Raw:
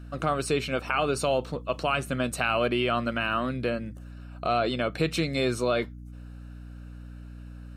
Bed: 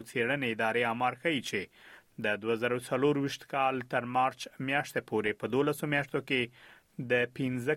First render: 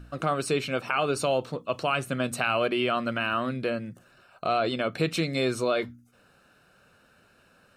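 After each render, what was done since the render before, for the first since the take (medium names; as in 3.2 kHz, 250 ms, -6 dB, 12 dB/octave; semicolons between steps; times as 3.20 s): de-hum 60 Hz, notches 5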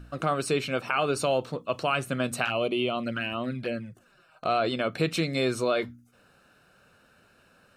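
2.45–4.44 s: touch-sensitive flanger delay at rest 7.3 ms, full sweep at -23 dBFS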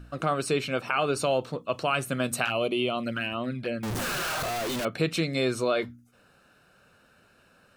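1.94–3.29 s: treble shelf 8.4 kHz +8.5 dB; 3.83–4.85 s: one-bit comparator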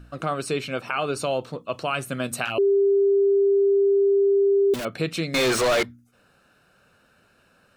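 2.58–4.74 s: bleep 397 Hz -15.5 dBFS; 5.34–5.83 s: overdrive pedal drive 36 dB, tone 4.4 kHz, clips at -14.5 dBFS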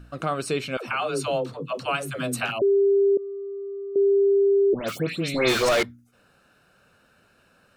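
0.77–2.62 s: phase dispersion lows, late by 123 ms, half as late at 350 Hz; 3.17–3.96 s: expander -10 dBFS; 4.73–5.69 s: phase dispersion highs, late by 148 ms, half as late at 2.3 kHz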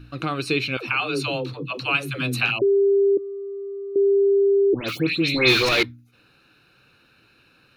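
graphic EQ with 31 bands 125 Hz +8 dB, 200 Hz -3 dB, 315 Hz +9 dB, 630 Hz -9 dB, 2.5 kHz +11 dB, 4 kHz +11 dB, 8 kHz -10 dB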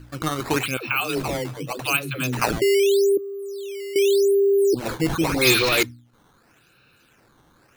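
decimation with a swept rate 10×, swing 160% 0.84 Hz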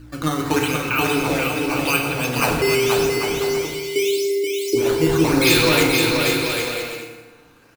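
bouncing-ball echo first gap 480 ms, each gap 0.65×, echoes 5; FDN reverb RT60 1.4 s, low-frequency decay 0.9×, high-frequency decay 0.7×, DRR 1 dB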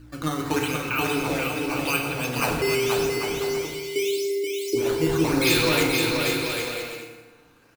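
trim -5 dB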